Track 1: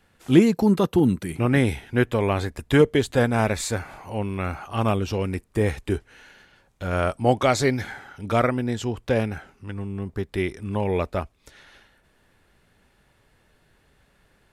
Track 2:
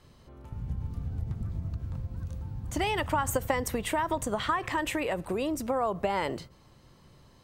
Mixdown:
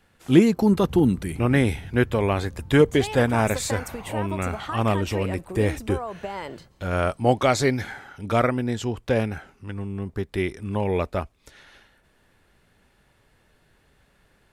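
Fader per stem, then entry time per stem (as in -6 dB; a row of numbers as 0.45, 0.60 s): 0.0, -4.0 dB; 0.00, 0.20 s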